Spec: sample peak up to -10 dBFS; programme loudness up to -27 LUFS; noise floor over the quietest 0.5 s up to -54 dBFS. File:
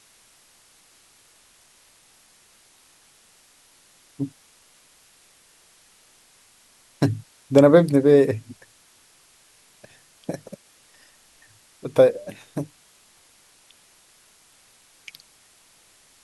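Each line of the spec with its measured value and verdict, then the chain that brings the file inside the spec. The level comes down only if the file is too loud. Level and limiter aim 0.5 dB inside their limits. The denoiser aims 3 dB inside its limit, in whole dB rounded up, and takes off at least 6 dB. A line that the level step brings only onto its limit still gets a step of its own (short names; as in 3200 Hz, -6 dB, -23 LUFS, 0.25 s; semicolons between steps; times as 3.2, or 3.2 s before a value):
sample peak -2.5 dBFS: fail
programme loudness -20.0 LUFS: fail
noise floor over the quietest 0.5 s -57 dBFS: OK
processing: gain -7.5 dB; limiter -10.5 dBFS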